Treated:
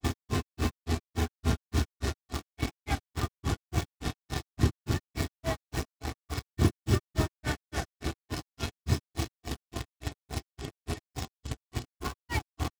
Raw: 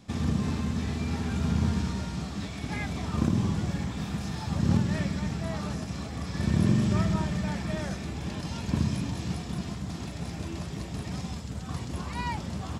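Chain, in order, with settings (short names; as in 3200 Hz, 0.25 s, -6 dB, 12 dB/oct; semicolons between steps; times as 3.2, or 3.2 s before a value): comb 2.7 ms, depth 84%; in parallel at -4 dB: bit-crush 5-bit; on the sum: grains 0.143 s, grains 3.5/s, pitch spread up and down by 0 st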